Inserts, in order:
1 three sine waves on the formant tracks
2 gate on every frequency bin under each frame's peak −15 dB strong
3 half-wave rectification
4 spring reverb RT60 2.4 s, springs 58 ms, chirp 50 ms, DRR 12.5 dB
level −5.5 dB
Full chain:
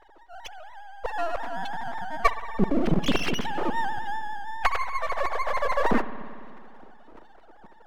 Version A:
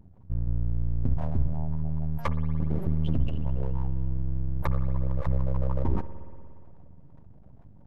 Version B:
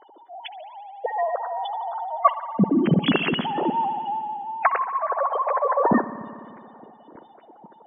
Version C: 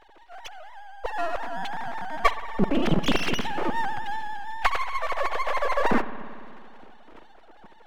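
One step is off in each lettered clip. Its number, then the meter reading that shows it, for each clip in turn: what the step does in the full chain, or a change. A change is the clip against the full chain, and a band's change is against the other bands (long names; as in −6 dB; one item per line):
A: 1, 125 Hz band +22.5 dB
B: 3, distortion level 0 dB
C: 2, 4 kHz band +2.0 dB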